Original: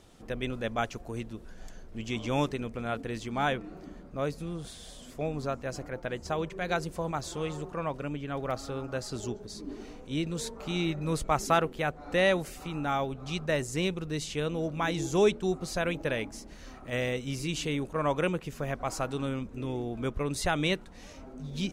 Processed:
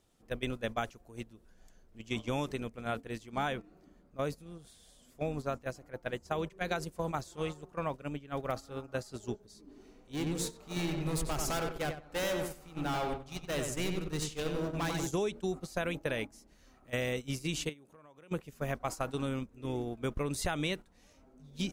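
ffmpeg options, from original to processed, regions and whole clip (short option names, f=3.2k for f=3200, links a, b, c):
-filter_complex "[0:a]asettb=1/sr,asplit=3[a][b][c];[a]atrim=end=9.674[d];[b]atrim=start=9.67:end=15.07,asetpts=PTS-STARTPTS,afade=t=in:d=0.004:c=qsin,afade=t=out:st=5.396:d=0.004:c=qsin,volume=30dB,asoftclip=hard,volume=-30dB,asubboost=boost=2.5:cutoff=60,asplit=2[e][f];[f]adelay=92,lowpass=f=3k:p=1,volume=-3.5dB,asplit=2[g][h];[h]adelay=92,lowpass=f=3k:p=1,volume=0.47,asplit=2[i][j];[j]adelay=92,lowpass=f=3k:p=1,volume=0.47,asplit=2[k][l];[l]adelay=92,lowpass=f=3k:p=1,volume=0.47,asplit=2[m][n];[n]adelay=92,lowpass=f=3k:p=1,volume=0.47,asplit=2[o][p];[p]adelay=92,lowpass=f=3k:p=1,volume=0.47[q];[e][g][i][k][m][o][q]amix=inputs=7:normalize=0,atrim=end_sample=238140[r];[c]atrim=start=15.066[s];[d][r]acrossfade=d=0.004:c1=hsin:c2=qsin[t];[t][s]acrossfade=d=0.004:c1=qsin:c2=hsin,asettb=1/sr,asplit=3[u][v][w];[u]atrim=end=17.694[x];[v]atrim=start=17.69:end=18.31,asetpts=PTS-STARTPTS,afade=t=in:d=0.004:c=qsin,afade=t=out:st=0.616:d=0.004:c=qsin,highpass=120,acompressor=threshold=-39dB:ratio=6:attack=3.2:release=140:knee=1:detection=peak[y];[w]atrim=start=18.306[z];[x][y]acrossfade=d=0.004:c1=hsin:c2=qsin[aa];[aa][z]acrossfade=d=0.004:c1=qsin:c2=hsin,agate=range=-15dB:threshold=-33dB:ratio=16:detection=peak,highshelf=f=9.5k:g=10.5,acompressor=threshold=-29dB:ratio=10"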